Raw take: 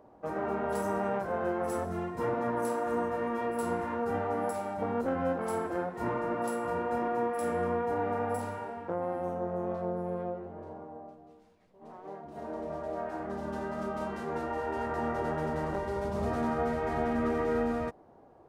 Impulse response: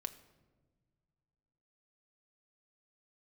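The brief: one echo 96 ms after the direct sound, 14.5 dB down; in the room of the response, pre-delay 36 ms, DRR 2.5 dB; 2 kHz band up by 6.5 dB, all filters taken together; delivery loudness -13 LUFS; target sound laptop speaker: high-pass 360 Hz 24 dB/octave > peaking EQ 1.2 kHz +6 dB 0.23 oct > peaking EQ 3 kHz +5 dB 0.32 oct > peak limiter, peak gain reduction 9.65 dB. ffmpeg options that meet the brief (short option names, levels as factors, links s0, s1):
-filter_complex "[0:a]equalizer=f=2000:t=o:g=7.5,aecho=1:1:96:0.188,asplit=2[s0][s1];[1:a]atrim=start_sample=2205,adelay=36[s2];[s1][s2]afir=irnorm=-1:irlink=0,volume=0.944[s3];[s0][s3]amix=inputs=2:normalize=0,highpass=f=360:w=0.5412,highpass=f=360:w=1.3066,equalizer=f=1200:t=o:w=0.23:g=6,equalizer=f=3000:t=o:w=0.32:g=5,volume=11.2,alimiter=limit=0.596:level=0:latency=1"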